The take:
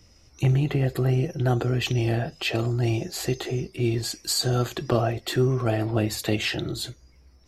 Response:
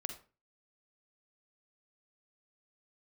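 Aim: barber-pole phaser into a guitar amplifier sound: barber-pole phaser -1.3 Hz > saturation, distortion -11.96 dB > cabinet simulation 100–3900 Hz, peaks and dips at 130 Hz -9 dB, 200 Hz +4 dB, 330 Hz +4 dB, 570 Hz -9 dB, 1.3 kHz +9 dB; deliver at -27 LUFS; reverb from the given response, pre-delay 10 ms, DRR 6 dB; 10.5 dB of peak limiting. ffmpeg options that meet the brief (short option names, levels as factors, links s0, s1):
-filter_complex "[0:a]alimiter=limit=0.106:level=0:latency=1,asplit=2[s0][s1];[1:a]atrim=start_sample=2205,adelay=10[s2];[s1][s2]afir=irnorm=-1:irlink=0,volume=0.562[s3];[s0][s3]amix=inputs=2:normalize=0,asplit=2[s4][s5];[s5]afreqshift=-1.3[s6];[s4][s6]amix=inputs=2:normalize=1,asoftclip=threshold=0.0376,highpass=100,equalizer=f=130:t=q:w=4:g=-9,equalizer=f=200:t=q:w=4:g=4,equalizer=f=330:t=q:w=4:g=4,equalizer=f=570:t=q:w=4:g=-9,equalizer=f=1300:t=q:w=4:g=9,lowpass=f=3900:w=0.5412,lowpass=f=3900:w=1.3066,volume=2.99"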